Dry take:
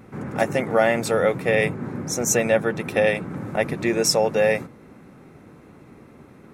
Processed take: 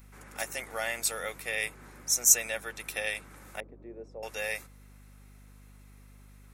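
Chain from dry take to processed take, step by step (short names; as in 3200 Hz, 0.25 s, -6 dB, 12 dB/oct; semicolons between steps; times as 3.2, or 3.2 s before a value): 3.6–4.23 Butterworth band-pass 330 Hz, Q 0.94; differentiator; hum 50 Hz, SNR 19 dB; gain +3 dB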